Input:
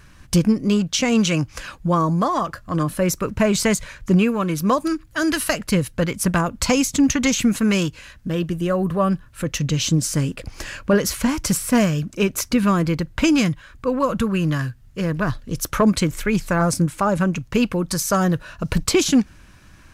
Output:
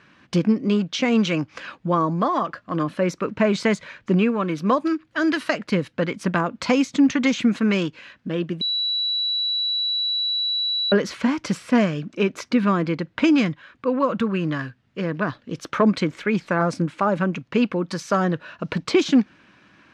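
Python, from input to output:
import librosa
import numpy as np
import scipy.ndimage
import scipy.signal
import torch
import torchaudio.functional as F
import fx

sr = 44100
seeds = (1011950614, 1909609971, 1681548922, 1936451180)

y = fx.edit(x, sr, fx.bleep(start_s=8.61, length_s=2.31, hz=3930.0, db=-16.5), tone=tone)
y = scipy.signal.sosfilt(scipy.signal.cheby1(2, 1.0, [230.0, 3200.0], 'bandpass', fs=sr, output='sos'), y)
y = fx.dynamic_eq(y, sr, hz=2800.0, q=4.5, threshold_db=-42.0, ratio=4.0, max_db=-4)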